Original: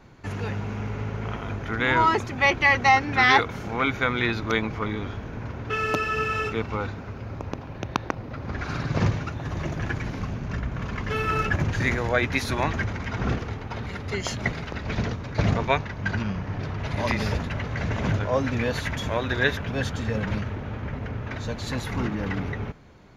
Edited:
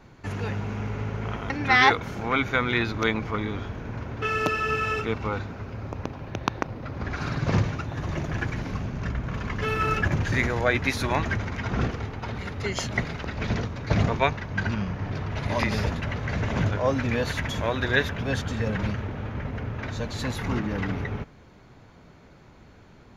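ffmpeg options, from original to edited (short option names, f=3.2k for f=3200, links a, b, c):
-filter_complex "[0:a]asplit=2[a][b];[a]atrim=end=1.502[c];[b]atrim=start=2.978[d];[c][d]acrossfade=d=0.004:c1=hsin:c2=hsin"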